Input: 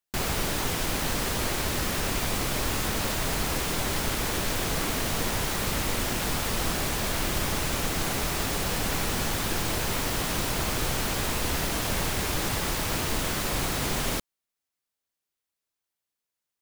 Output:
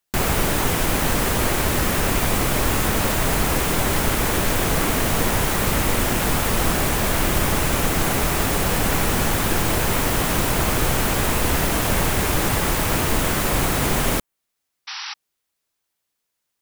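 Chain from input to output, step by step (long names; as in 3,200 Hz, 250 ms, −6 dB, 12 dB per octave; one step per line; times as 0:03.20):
dynamic equaliser 4,600 Hz, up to −6 dB, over −49 dBFS, Q 0.96
sound drawn into the spectrogram noise, 0:14.87–0:15.14, 770–5,900 Hz −40 dBFS
level +8.5 dB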